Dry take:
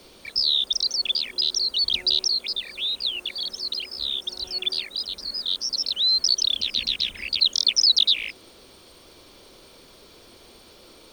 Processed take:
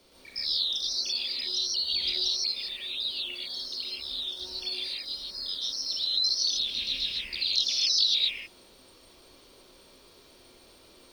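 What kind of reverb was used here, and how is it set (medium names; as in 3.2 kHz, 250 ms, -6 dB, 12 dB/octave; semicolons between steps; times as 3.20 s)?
gated-style reverb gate 180 ms rising, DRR -5.5 dB; trim -12 dB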